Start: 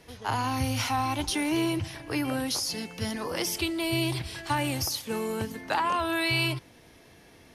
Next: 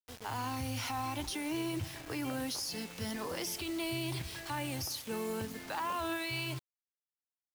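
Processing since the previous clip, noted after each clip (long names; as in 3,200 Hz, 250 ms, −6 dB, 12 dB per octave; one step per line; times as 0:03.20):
brickwall limiter −23 dBFS, peak gain reduction 8 dB
bit reduction 7 bits
level −5.5 dB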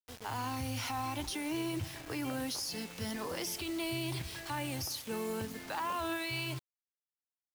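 no processing that can be heard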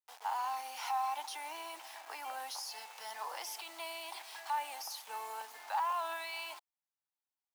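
four-pole ladder high-pass 750 Hz, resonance 65%
level +6 dB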